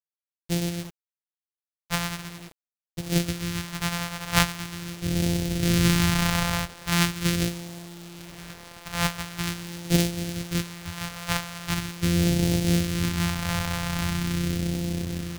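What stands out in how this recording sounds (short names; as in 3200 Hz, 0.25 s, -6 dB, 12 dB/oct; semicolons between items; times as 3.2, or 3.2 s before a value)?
a buzz of ramps at a fixed pitch in blocks of 256 samples; phasing stages 2, 0.42 Hz, lowest notch 330–1100 Hz; a quantiser's noise floor 8-bit, dither none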